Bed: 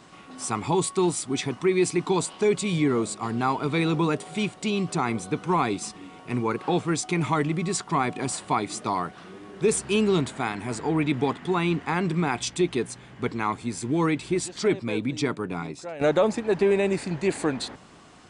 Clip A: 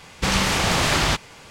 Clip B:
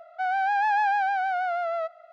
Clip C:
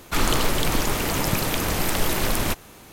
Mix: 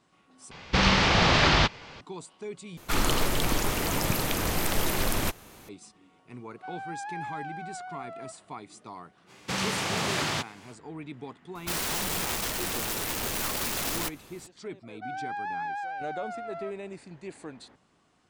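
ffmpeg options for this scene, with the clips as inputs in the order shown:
-filter_complex "[1:a]asplit=2[s0][s1];[3:a]asplit=2[s2][s3];[2:a]asplit=2[s4][s5];[0:a]volume=0.15[s6];[s0]lowpass=f=5200:w=0.5412,lowpass=f=5200:w=1.3066[s7];[s1]highpass=f=100:w=0.5412,highpass=f=100:w=1.3066[s8];[s3]aeval=exprs='(mod(9.44*val(0)+1,2)-1)/9.44':c=same[s9];[s6]asplit=3[s10][s11][s12];[s10]atrim=end=0.514[s13];[s7]atrim=end=1.5,asetpts=PTS-STARTPTS,volume=0.944[s14];[s11]atrim=start=2.006:end=2.774[s15];[s2]atrim=end=2.92,asetpts=PTS-STARTPTS,volume=0.631[s16];[s12]atrim=start=5.686[s17];[s4]atrim=end=2.12,asetpts=PTS-STARTPTS,volume=0.2,afade=t=in:d=0.004:c=hsin,afade=t=out:st=2.116:d=0.004:c=hsin,adelay=6440[s18];[s8]atrim=end=1.5,asetpts=PTS-STARTPTS,volume=0.376,afade=t=in:d=0.05,afade=t=out:st=1.45:d=0.05,adelay=9260[s19];[s9]atrim=end=2.92,asetpts=PTS-STARTPTS,volume=0.473,afade=t=in:d=0.004:c=hsin,afade=t=out:st=2.916:d=0.004:c=hsin,adelay=11550[s20];[s5]atrim=end=2.12,asetpts=PTS-STARTPTS,volume=0.299,afade=t=in:d=0.004:c=hsin,afade=t=out:st=2.116:d=0.004:c=hsin,adelay=14830[s21];[s13][s14]acrossfade=d=0.004:c1=hsin:c2=hsin[s22];[s22][s15]acrossfade=d=0.004:c1=hsin:c2=hsin[s23];[s23][s16]acrossfade=d=0.004:c1=hsin:c2=hsin[s24];[s24][s17]acrossfade=d=0.004:c1=hsin:c2=hsin[s25];[s25][s18][s19][s20][s21]amix=inputs=5:normalize=0"

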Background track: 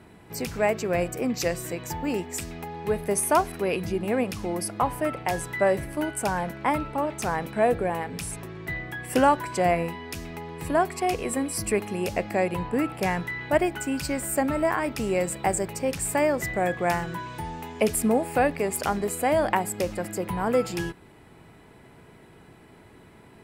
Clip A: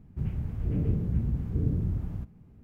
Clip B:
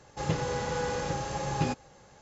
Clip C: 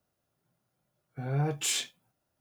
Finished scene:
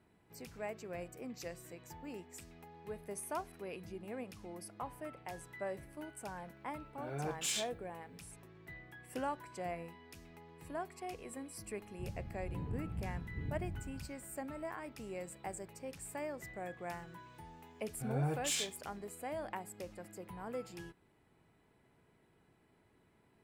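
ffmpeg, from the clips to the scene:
-filter_complex "[3:a]asplit=2[s0][s1];[0:a]volume=0.112[s2];[s0]highpass=220,atrim=end=2.4,asetpts=PTS-STARTPTS,volume=0.473,afade=t=in:d=0.004:c=hsin,afade=t=out:st=2.396:d=0.004:c=hsin,adelay=5800[s3];[1:a]atrim=end=2.63,asetpts=PTS-STARTPTS,volume=0.2,afade=t=in:d=0.004:c=hsin,afade=t=out:st=2.626:d=0.004:c=hsin,adelay=11820[s4];[s1]atrim=end=2.4,asetpts=PTS-STARTPTS,volume=0.501,afade=t=in:d=0.004:c=hsin,afade=t=out:st=2.396:d=0.004:c=hsin,adelay=16830[s5];[s2][s3][s4][s5]amix=inputs=4:normalize=0"

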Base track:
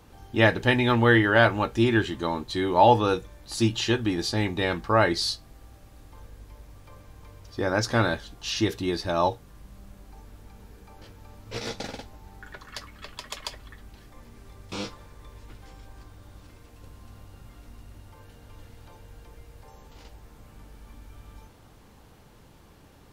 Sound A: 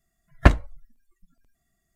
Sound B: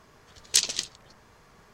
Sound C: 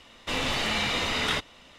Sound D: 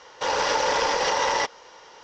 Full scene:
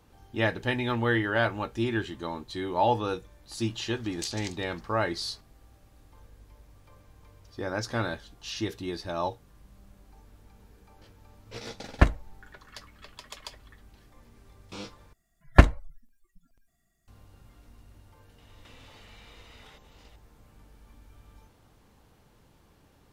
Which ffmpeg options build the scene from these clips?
-filter_complex "[1:a]asplit=2[s0][s1];[0:a]volume=0.447[s2];[2:a]acompressor=threshold=0.0251:ratio=3:attack=4.9:release=201:knee=1:detection=rms[s3];[3:a]acompressor=threshold=0.00794:ratio=6:attack=3.2:release=140:knee=1:detection=peak[s4];[s2]asplit=2[s5][s6];[s5]atrim=end=15.134[s7];[s1]atrim=end=1.95[s8];[s6]atrim=start=17.076[s9];[s3]atrim=end=1.73,asetpts=PTS-STARTPTS,volume=0.668,afade=t=in:d=0.004:c=hsin,afade=t=out:st=1.726:d=0.004:c=hsin,adelay=3680[s10];[s0]atrim=end=1.95,asetpts=PTS-STARTPTS,volume=0.562,afade=t=in:d=0.004:c=hsin,afade=t=out:st=1.946:d=0.004:c=hsin,adelay=11560[s11];[s4]atrim=end=1.78,asetpts=PTS-STARTPTS,volume=0.316,afade=t=in:d=0.004:c=hsin,afade=t=out:st=1.776:d=0.004:c=hsin,adelay=18380[s12];[s7][s8]acrossfade=d=0.004:c1=hsin:c2=hsin[s13];[s13][s9]acrossfade=d=0.004:c1=hsin:c2=hsin[s14];[s14][s10][s11][s12]amix=inputs=4:normalize=0"

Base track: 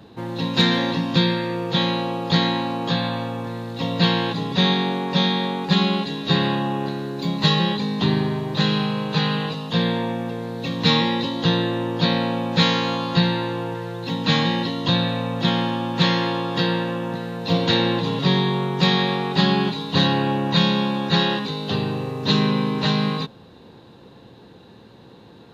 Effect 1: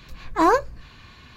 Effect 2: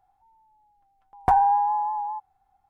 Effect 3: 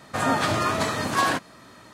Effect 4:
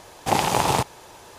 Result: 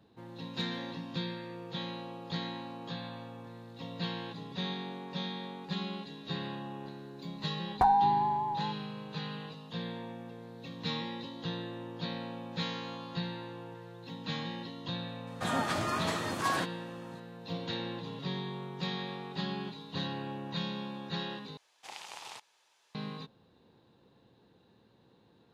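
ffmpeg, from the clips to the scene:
-filter_complex "[0:a]volume=0.126[s0];[4:a]bandpass=f=3500:t=q:w=0.76:csg=0[s1];[s0]asplit=2[s2][s3];[s2]atrim=end=21.574[s4];[s1]atrim=end=1.38,asetpts=PTS-STARTPTS,volume=0.133[s5];[s3]atrim=start=22.946[s6];[2:a]atrim=end=2.69,asetpts=PTS-STARTPTS,volume=0.531,afade=t=in:d=0.004:c=hsin,afade=t=out:st=2.686:d=0.004:c=hsin,adelay=6530[s7];[3:a]atrim=end=1.93,asetpts=PTS-STARTPTS,volume=0.355,afade=t=in:d=0.004:c=hsin,afade=t=out:st=1.926:d=0.004:c=hsin,adelay=15270[s8];[s4][s5]acrossfade=d=0.004:c1=hsin:c2=hsin[s9];[s9][s6]acrossfade=d=0.004:c1=hsin:c2=hsin[s10];[s10][s7][s8]amix=inputs=3:normalize=0"

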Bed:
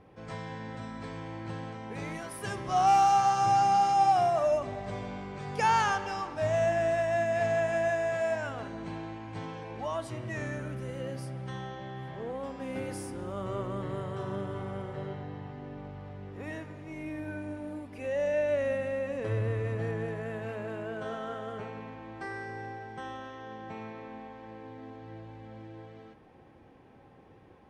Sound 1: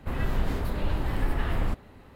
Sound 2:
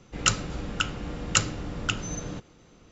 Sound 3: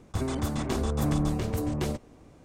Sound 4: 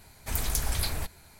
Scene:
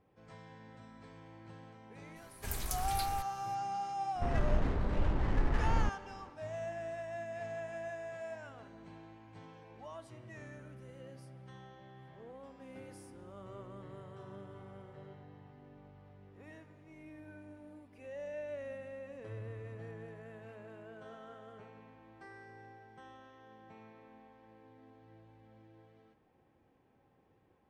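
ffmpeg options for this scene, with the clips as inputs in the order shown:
-filter_complex "[0:a]volume=0.2[s0];[1:a]adynamicsmooth=sensitivity=7.5:basefreq=1100[s1];[4:a]atrim=end=1.39,asetpts=PTS-STARTPTS,volume=0.355,afade=t=in:d=0.004:c=hsin,afade=t=out:st=1.386:d=0.004:c=hsin,adelay=2160[s2];[s1]atrim=end=2.15,asetpts=PTS-STARTPTS,volume=0.668,afade=t=in:d=0.004:c=hsin,afade=t=out:st=2.146:d=0.004:c=hsin,adelay=4150[s3];[s0][s2][s3]amix=inputs=3:normalize=0"

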